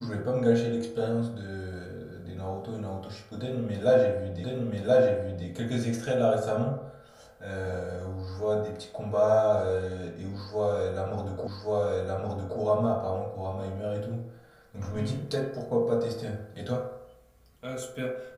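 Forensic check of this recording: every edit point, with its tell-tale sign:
0:04.44: the same again, the last 1.03 s
0:11.47: the same again, the last 1.12 s

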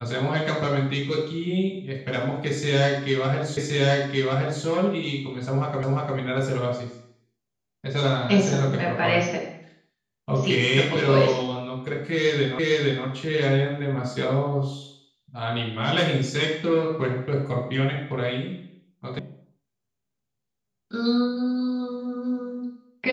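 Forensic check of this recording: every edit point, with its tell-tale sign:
0:03.57: the same again, the last 1.07 s
0:05.83: the same again, the last 0.35 s
0:12.59: the same again, the last 0.46 s
0:19.19: cut off before it has died away

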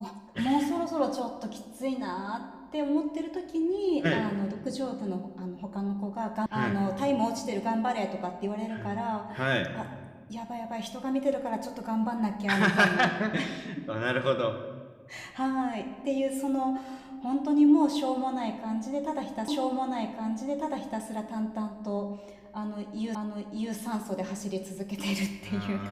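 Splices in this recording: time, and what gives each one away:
0:06.46: cut off before it has died away
0:19.48: the same again, the last 1.55 s
0:23.15: the same again, the last 0.59 s

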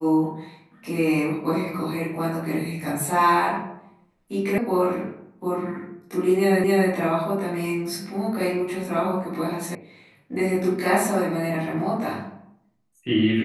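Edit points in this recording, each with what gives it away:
0:04.58: cut off before it has died away
0:06.64: the same again, the last 0.27 s
0:09.75: cut off before it has died away

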